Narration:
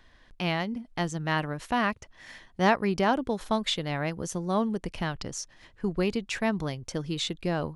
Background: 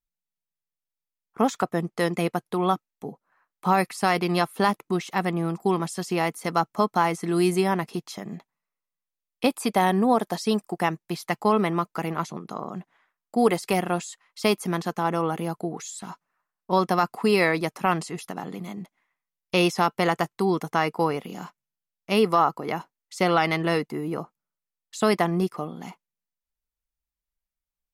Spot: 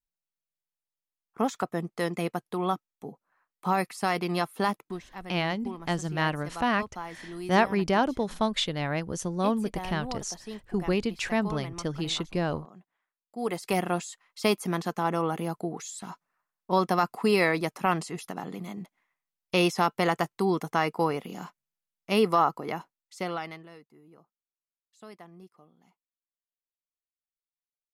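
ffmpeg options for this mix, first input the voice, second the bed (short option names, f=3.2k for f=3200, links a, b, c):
-filter_complex "[0:a]adelay=4900,volume=0.5dB[a];[1:a]volume=9dB,afade=t=out:st=4.74:d=0.29:silence=0.266073,afade=t=in:st=13.35:d=0.43:silence=0.199526,afade=t=out:st=22.47:d=1.21:silence=0.0668344[b];[a][b]amix=inputs=2:normalize=0"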